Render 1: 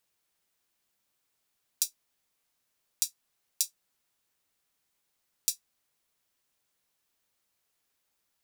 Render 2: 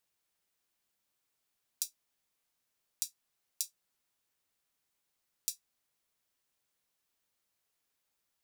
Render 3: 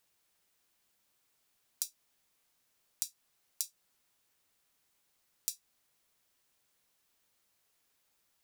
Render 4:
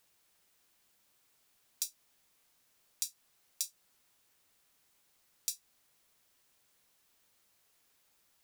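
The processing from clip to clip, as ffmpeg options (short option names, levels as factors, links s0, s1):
-af "acompressor=threshold=0.0501:ratio=6,volume=0.631"
-af "acompressor=threshold=0.0141:ratio=6,volume=2.11"
-af "asoftclip=type=tanh:threshold=0.0794,volume=1.58"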